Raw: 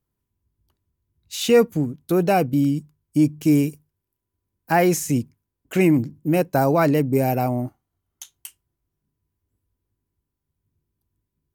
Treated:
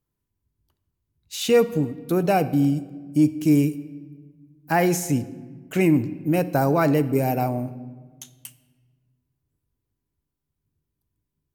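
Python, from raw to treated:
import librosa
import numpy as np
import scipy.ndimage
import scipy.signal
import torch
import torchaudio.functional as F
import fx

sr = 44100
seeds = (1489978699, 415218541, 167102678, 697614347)

y = fx.room_shoebox(x, sr, seeds[0], volume_m3=1400.0, walls='mixed', distance_m=0.41)
y = y * 10.0 ** (-2.0 / 20.0)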